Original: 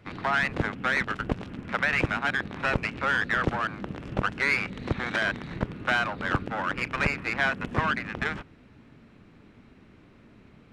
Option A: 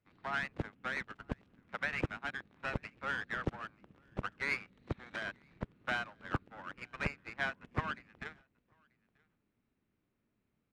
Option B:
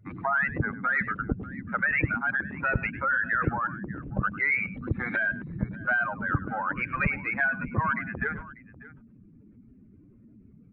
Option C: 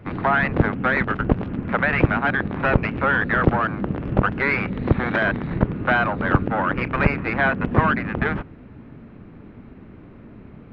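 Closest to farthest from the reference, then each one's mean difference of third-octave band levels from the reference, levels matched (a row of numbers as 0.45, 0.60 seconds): C, A, B; 5.0, 6.5, 9.0 decibels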